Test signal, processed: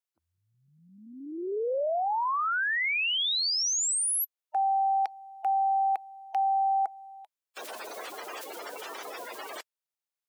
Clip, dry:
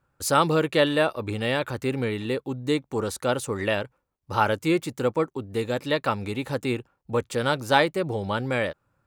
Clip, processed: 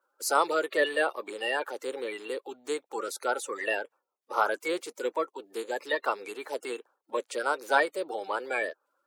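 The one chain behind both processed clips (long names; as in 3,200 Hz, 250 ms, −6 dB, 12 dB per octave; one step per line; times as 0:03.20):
spectral magnitudes quantised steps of 30 dB
high-pass filter 410 Hz 24 dB per octave
level −2.5 dB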